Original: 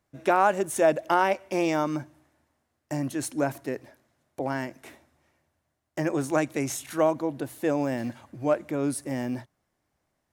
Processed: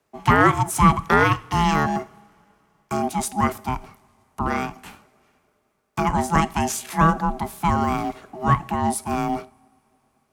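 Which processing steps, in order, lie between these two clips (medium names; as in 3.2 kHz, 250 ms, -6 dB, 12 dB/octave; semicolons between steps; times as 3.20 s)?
two-slope reverb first 0.44 s, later 3.4 s, from -22 dB, DRR 16 dB; ring modulator 490 Hz; frequency shift +23 Hz; trim +8.5 dB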